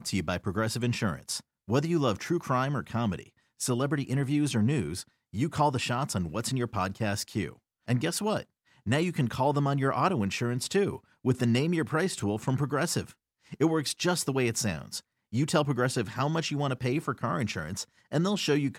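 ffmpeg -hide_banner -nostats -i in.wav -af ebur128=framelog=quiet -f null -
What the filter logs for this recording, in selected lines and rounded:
Integrated loudness:
  I:         -29.3 LUFS
  Threshold: -39.6 LUFS
Loudness range:
  LRA:         2.2 LU
  Threshold: -49.5 LUFS
  LRA low:   -30.4 LUFS
  LRA high:  -28.2 LUFS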